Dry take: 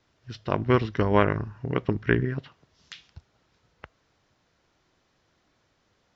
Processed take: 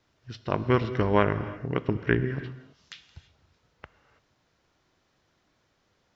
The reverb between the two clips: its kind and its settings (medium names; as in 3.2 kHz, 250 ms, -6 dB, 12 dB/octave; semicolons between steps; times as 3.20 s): gated-style reverb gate 360 ms flat, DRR 12 dB; trim -1.5 dB